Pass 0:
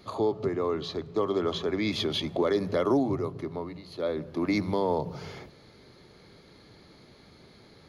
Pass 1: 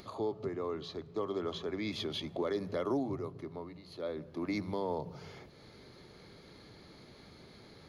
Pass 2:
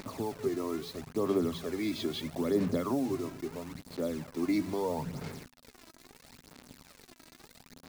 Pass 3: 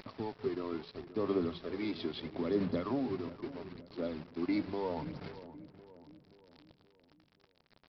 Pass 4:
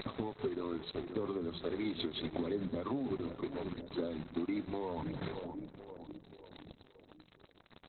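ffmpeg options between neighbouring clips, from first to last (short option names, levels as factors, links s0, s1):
-af "acompressor=mode=upward:threshold=0.0141:ratio=2.5,volume=0.376"
-af "acrusher=bits=7:mix=0:aa=0.000001,aphaser=in_gain=1:out_gain=1:delay=3.1:decay=0.53:speed=0.76:type=sinusoidal,equalizer=f=160:t=o:w=0.33:g=5,equalizer=f=250:t=o:w=0.33:g=11,equalizer=f=3150:t=o:w=0.33:g=-4"
-filter_complex "[0:a]aresample=11025,aeval=exprs='sgn(val(0))*max(abs(val(0))-0.00531,0)':c=same,aresample=44100,asplit=2[s0][s1];[s1]adelay=527,lowpass=f=1100:p=1,volume=0.2,asplit=2[s2][s3];[s3]adelay=527,lowpass=f=1100:p=1,volume=0.53,asplit=2[s4][s5];[s5]adelay=527,lowpass=f=1100:p=1,volume=0.53,asplit=2[s6][s7];[s7]adelay=527,lowpass=f=1100:p=1,volume=0.53,asplit=2[s8][s9];[s9]adelay=527,lowpass=f=1100:p=1,volume=0.53[s10];[s0][s2][s4][s6][s8][s10]amix=inputs=6:normalize=0,volume=0.75"
-af "acompressor=threshold=0.00891:ratio=8,aexciter=amount=6.7:drive=6.2:freq=4400,volume=2.82" -ar 48000 -c:a libopus -b:a 8k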